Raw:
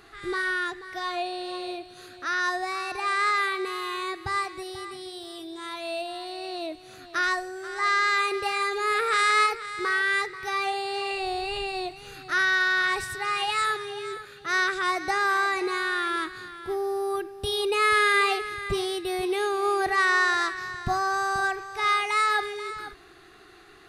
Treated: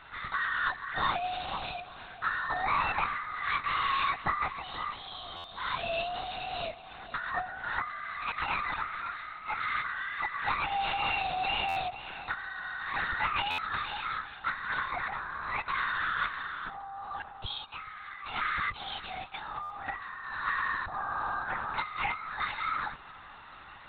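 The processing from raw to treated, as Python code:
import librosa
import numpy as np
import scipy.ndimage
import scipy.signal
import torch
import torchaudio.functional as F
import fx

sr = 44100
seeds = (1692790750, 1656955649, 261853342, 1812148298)

p1 = fx.low_shelf(x, sr, hz=500.0, db=3.0)
p2 = fx.over_compress(p1, sr, threshold_db=-29.0, ratio=-0.5)
p3 = scipy.signal.sosfilt(scipy.signal.cheby2(4, 40, [170.0, 460.0], 'bandstop', fs=sr, output='sos'), p2)
p4 = fx.lpc_vocoder(p3, sr, seeds[0], excitation='whisper', order=10)
p5 = fx.peak_eq(p4, sr, hz=1100.0, db=2.5, octaves=0.68)
p6 = p5 + fx.echo_bbd(p5, sr, ms=428, stages=4096, feedback_pct=80, wet_db=-20.5, dry=0)
p7 = fx.buffer_glitch(p6, sr, at_s=(5.36, 11.68, 13.5, 19.62), block=512, repeats=6)
y = p7 * librosa.db_to_amplitude(-2.0)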